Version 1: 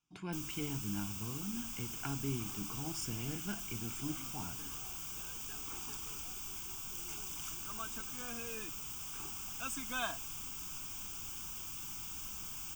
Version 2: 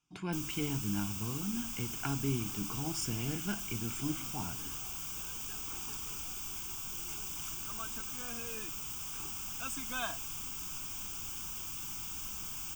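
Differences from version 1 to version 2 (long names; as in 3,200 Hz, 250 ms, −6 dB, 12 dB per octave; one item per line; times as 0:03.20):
speech +4.5 dB
first sound +3.0 dB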